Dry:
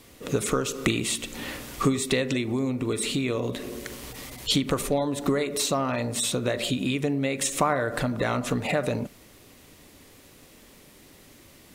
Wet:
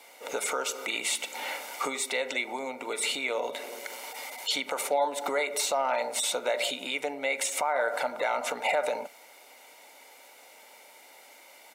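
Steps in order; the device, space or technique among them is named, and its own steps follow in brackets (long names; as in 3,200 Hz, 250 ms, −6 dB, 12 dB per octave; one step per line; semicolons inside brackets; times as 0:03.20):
laptop speaker (high-pass filter 400 Hz 24 dB per octave; parametric band 910 Hz +11.5 dB 0.34 octaves; parametric band 2,200 Hz +7 dB 0.32 octaves; brickwall limiter −17 dBFS, peak gain reduction 12 dB)
high-pass filter 93 Hz
low-shelf EQ 310 Hz +5 dB
comb filter 1.4 ms, depth 59%
level −2 dB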